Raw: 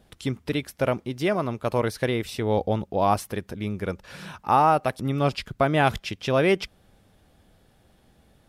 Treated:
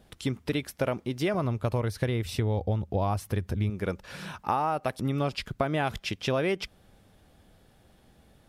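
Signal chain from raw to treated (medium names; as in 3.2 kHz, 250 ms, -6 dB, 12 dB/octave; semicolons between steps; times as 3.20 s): 1.34–3.70 s: peaking EQ 88 Hz +13.5 dB 1.3 oct; compression 12:1, threshold -23 dBFS, peak gain reduction 10.5 dB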